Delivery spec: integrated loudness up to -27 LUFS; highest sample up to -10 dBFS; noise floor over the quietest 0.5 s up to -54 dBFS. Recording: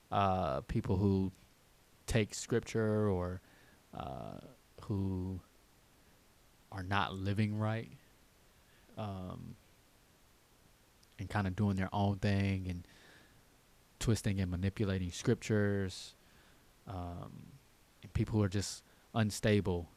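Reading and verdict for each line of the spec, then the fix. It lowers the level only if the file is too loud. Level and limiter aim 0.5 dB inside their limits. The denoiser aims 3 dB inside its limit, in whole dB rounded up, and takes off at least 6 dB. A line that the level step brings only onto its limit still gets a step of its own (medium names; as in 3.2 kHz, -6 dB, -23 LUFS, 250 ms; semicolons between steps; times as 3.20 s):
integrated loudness -36.0 LUFS: pass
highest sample -16.0 dBFS: pass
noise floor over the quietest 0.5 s -66 dBFS: pass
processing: none needed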